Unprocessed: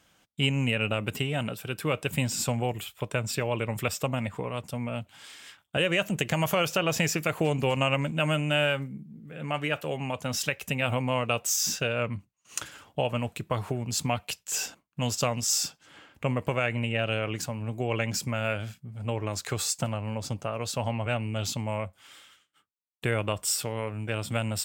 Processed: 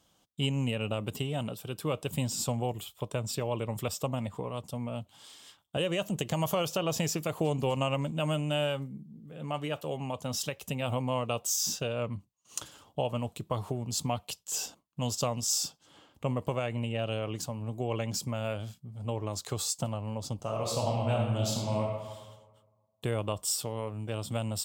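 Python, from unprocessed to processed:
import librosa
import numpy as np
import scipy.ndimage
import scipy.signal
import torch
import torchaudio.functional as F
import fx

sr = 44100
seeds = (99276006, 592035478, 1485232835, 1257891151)

y = fx.reverb_throw(x, sr, start_s=20.36, length_s=1.49, rt60_s=1.4, drr_db=-1.0)
y = fx.band_shelf(y, sr, hz=1900.0, db=-9.5, octaves=1.1)
y = y * 10.0 ** (-3.0 / 20.0)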